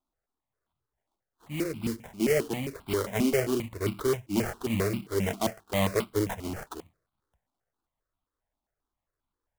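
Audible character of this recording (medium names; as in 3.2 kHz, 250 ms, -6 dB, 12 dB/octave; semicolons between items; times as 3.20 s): aliases and images of a low sample rate 2.6 kHz, jitter 20%; notches that jump at a steady rate 7.5 Hz 470–1800 Hz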